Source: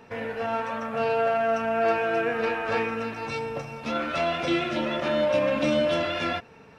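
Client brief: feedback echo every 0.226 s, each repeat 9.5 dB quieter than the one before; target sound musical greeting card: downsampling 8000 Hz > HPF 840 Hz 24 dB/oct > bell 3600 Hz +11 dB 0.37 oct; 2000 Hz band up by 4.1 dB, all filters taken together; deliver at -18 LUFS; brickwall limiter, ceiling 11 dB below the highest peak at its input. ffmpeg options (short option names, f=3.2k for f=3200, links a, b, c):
-af "equalizer=f=2k:t=o:g=4.5,alimiter=limit=-23dB:level=0:latency=1,aecho=1:1:226|452|678|904:0.335|0.111|0.0365|0.012,aresample=8000,aresample=44100,highpass=f=840:w=0.5412,highpass=f=840:w=1.3066,equalizer=f=3.6k:t=o:w=0.37:g=11,volume=14dB"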